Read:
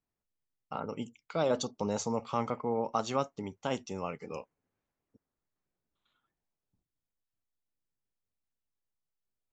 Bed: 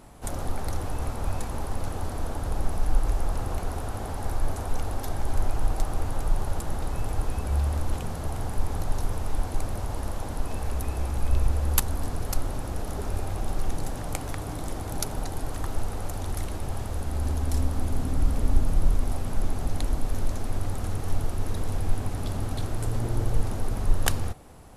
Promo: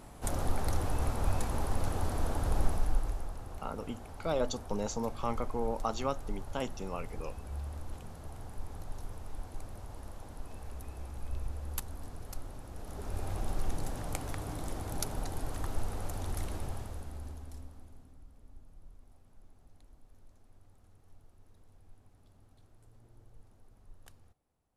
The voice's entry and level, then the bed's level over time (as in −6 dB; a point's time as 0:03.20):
2.90 s, −2.5 dB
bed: 0:02.64 −1.5 dB
0:03.37 −14.5 dB
0:12.69 −14.5 dB
0:13.30 −5.5 dB
0:16.60 −5.5 dB
0:18.27 −32.5 dB